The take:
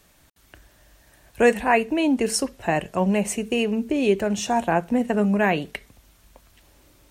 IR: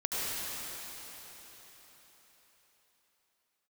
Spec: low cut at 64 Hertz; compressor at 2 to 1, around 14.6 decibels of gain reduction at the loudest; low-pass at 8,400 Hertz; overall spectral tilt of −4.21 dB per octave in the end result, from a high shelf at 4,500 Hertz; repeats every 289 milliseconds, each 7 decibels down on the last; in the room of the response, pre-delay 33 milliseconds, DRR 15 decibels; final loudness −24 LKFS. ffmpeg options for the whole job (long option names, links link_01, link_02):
-filter_complex "[0:a]highpass=64,lowpass=8400,highshelf=frequency=4500:gain=4.5,acompressor=threshold=-40dB:ratio=2,aecho=1:1:289|578|867|1156|1445:0.447|0.201|0.0905|0.0407|0.0183,asplit=2[link_01][link_02];[1:a]atrim=start_sample=2205,adelay=33[link_03];[link_02][link_03]afir=irnorm=-1:irlink=0,volume=-23.5dB[link_04];[link_01][link_04]amix=inputs=2:normalize=0,volume=9.5dB"